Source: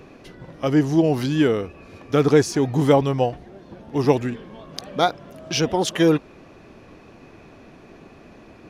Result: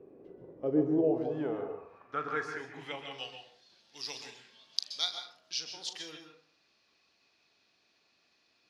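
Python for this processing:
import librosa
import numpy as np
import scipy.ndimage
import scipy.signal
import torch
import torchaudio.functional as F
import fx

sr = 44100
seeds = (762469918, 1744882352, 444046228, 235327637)

y = fx.low_shelf(x, sr, hz=150.0, db=10.5)
y = fx.filter_sweep_bandpass(y, sr, from_hz=420.0, to_hz=4500.0, start_s=0.84, end_s=3.57, q=3.0)
y = fx.high_shelf(y, sr, hz=2100.0, db=11.5, at=(3.11, 5.26))
y = fx.room_flutter(y, sr, wall_m=6.7, rt60_s=0.21)
y = fx.rev_plate(y, sr, seeds[0], rt60_s=0.56, hf_ratio=0.45, predelay_ms=115, drr_db=5.0)
y = F.gain(torch.from_numpy(y), -6.0).numpy()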